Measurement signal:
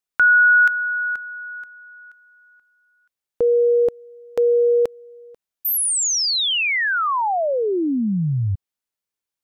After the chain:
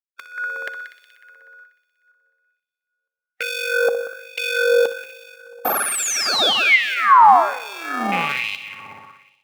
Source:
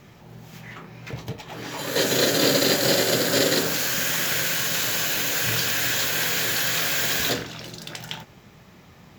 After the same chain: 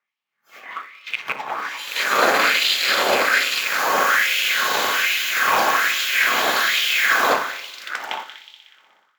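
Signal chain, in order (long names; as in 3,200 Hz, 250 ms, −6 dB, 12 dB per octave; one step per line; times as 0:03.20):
loose part that buzzes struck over −30 dBFS, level −16 dBFS
noise reduction from a noise print of the clip's start 27 dB
in parallel at −3.5 dB: sample-rate reduction 1,000 Hz, jitter 0%
on the sum: soft clipping −10 dBFS
tilt shelving filter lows +8 dB, about 1,400 Hz
hollow resonant body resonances 220/1,100/2,100 Hz, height 6 dB
on a send: echo machine with several playback heads 61 ms, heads first and third, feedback 66%, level −14 dB
on the sum: auto-filter high-pass sine 1.2 Hz 840–2,900 Hz
parametric band 88 Hz +7 dB 0.43 octaves
spring reverb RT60 1.3 s, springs 34/38 ms, chirp 55 ms, DRR 19 dB
automatic gain control gain up to 7 dB
auto-filter bell 0.53 Hz 890–3,900 Hz +6 dB
level −3 dB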